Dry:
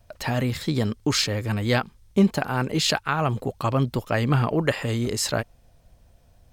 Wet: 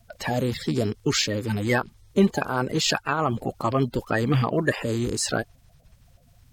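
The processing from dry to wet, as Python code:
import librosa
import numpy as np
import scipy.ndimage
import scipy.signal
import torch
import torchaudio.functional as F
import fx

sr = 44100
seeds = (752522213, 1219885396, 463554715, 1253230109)

y = fx.spec_quant(x, sr, step_db=30)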